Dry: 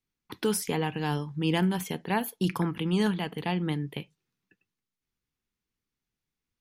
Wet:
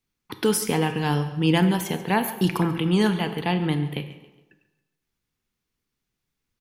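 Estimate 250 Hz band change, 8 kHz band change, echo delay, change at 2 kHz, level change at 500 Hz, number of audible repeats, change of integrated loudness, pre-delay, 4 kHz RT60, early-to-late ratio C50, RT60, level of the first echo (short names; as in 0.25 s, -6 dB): +6.0 dB, +6.0 dB, 0.138 s, +6.0 dB, +6.0 dB, 3, +6.0 dB, 28 ms, 0.80 s, 10.0 dB, 1.1 s, -16.5 dB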